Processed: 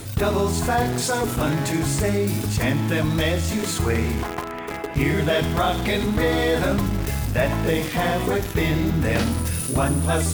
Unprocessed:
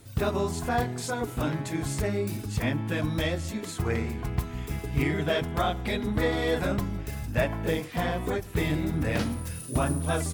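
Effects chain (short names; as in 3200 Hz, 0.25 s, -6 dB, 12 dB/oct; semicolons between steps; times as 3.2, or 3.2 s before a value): 4.23–4.96 three-band isolator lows -24 dB, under 340 Hz, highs -21 dB, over 2300 Hz; notches 60/120/180/240/300 Hz; on a send: thin delay 77 ms, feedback 44%, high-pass 4000 Hz, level -8 dB; on the sum: Schroeder reverb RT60 0.46 s, combs from 33 ms, DRR 18 dB; in parallel at -5 dB: requantised 6-bit, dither none; 8.39–9 on the sum: bell 9000 Hz -7.5 dB -> -14.5 dB 0.25 oct; fast leveller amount 50%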